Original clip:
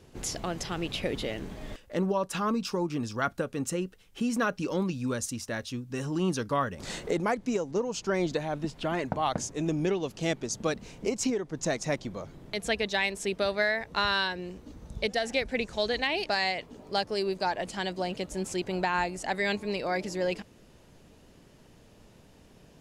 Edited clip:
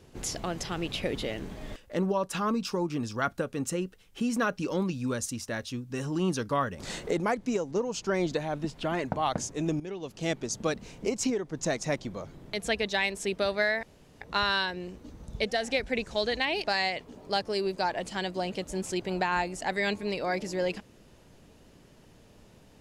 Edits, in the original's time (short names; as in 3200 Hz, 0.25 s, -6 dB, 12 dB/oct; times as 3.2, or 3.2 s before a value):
9.8–10.36 fade in, from -16 dB
13.83 insert room tone 0.38 s